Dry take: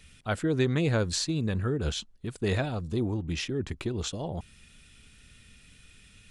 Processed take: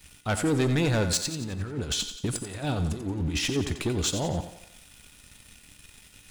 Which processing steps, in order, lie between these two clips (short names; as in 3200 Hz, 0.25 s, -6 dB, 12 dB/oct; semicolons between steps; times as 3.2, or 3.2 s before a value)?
high shelf 7000 Hz +10.5 dB; 1.17–3.56 negative-ratio compressor -34 dBFS, ratio -0.5; sample leveller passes 3; resonator 290 Hz, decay 0.46 s, harmonics odd, mix 70%; thinning echo 89 ms, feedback 50%, high-pass 210 Hz, level -9.5 dB; gain +4.5 dB